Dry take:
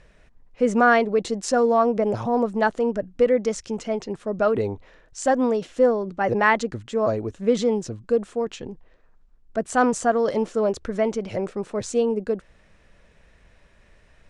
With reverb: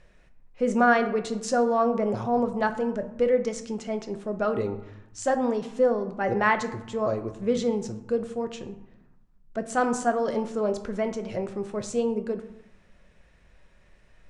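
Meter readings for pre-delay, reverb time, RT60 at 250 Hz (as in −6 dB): 5 ms, 0.95 s, 1.3 s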